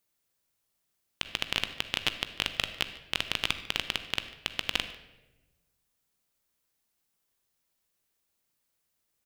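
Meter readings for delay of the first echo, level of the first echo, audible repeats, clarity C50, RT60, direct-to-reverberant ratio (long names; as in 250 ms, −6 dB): 147 ms, −21.0 dB, 1, 11.0 dB, 1.1 s, 9.5 dB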